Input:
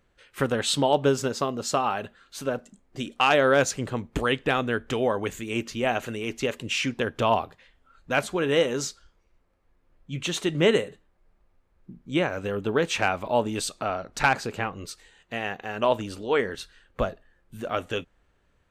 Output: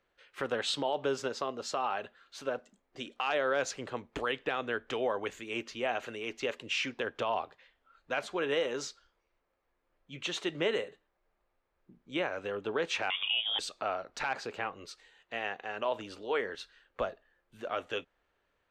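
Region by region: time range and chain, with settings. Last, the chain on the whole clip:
13.1–13.59 inverted band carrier 3500 Hz + three-band squash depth 100%
whole clip: three-band isolator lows -13 dB, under 340 Hz, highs -15 dB, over 6000 Hz; limiter -16.5 dBFS; gain -4.5 dB

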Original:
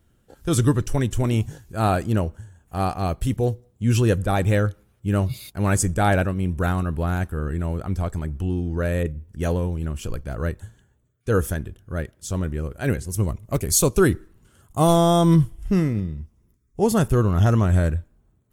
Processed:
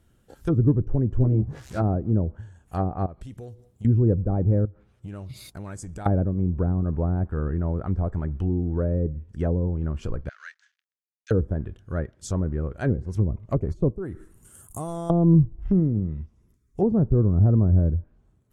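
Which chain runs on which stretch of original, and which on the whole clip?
1.16–1.82 switching spikes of -21.5 dBFS + doubler 15 ms -3 dB
3.06–3.85 compressor 8:1, threshold -36 dBFS + high shelf 12000 Hz +6 dB
4.65–6.06 compressor 8:1, threshold -33 dBFS + Doppler distortion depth 0.14 ms
10.29–11.31 backlash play -45 dBFS + elliptic band-pass 1600–6400 Hz, stop band 80 dB
13.9–15.1 resonant high shelf 6500 Hz +13.5 dB, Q 1.5 + compressor 4:1, threshold -30 dBFS
whole clip: treble ducked by the level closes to 410 Hz, closed at -18 dBFS; dynamic EQ 2900 Hz, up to -7 dB, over -56 dBFS, Q 1.6

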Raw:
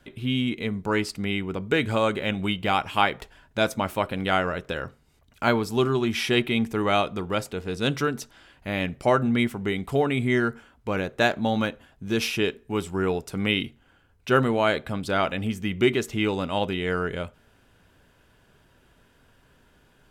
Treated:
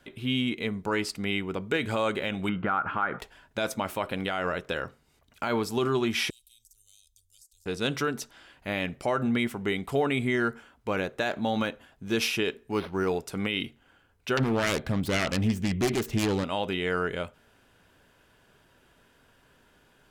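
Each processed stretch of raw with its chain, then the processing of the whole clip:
2.49–3.19 synth low-pass 1400 Hz, resonance Q 6.9 + bell 190 Hz +7.5 dB 2 oct + compressor 5:1, threshold -21 dBFS
6.3–7.66 inverse Chebyshev band-stop 140–2000 Hz, stop band 60 dB + compressor 10:1, threshold -52 dBFS
12.71–13.2 high shelf 10000 Hz +9.5 dB + decimation joined by straight lines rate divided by 6×
14.37–16.44 self-modulated delay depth 0.54 ms + low shelf 230 Hz +12 dB
whole clip: low shelf 190 Hz -7 dB; limiter -16.5 dBFS

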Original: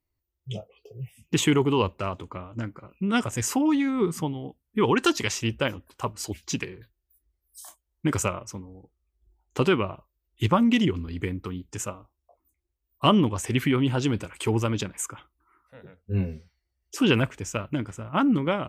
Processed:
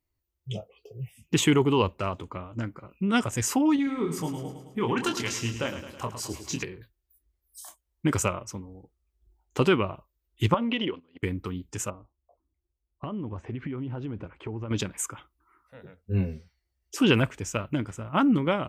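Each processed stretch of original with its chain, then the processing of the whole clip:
3.76–6.63 compressor 1.5:1, threshold -34 dBFS + doubler 25 ms -6 dB + feedback echo 0.107 s, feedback 58%, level -10 dB
10.54–11.23 speaker cabinet 290–3800 Hz, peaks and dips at 520 Hz +8 dB, 1000 Hz +4 dB, 3000 Hz +5 dB + compressor 2.5:1, threshold -25 dBFS + gate -37 dBFS, range -22 dB
11.9–14.71 compressor 10:1, threshold -28 dBFS + tape spacing loss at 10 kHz 44 dB + mismatched tape noise reduction decoder only
whole clip: dry

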